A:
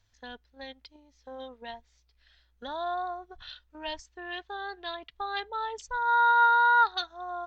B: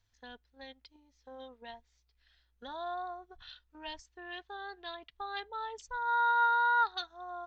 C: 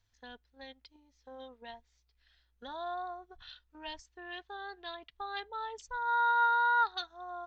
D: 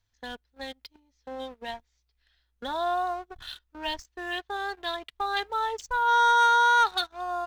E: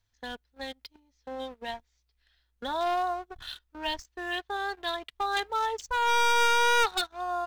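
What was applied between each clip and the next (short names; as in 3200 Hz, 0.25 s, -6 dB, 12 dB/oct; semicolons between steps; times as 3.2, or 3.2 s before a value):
notch 600 Hz, Q 12; gain -6 dB
nothing audible
sample leveller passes 2; gain +3.5 dB
one-sided fold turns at -23 dBFS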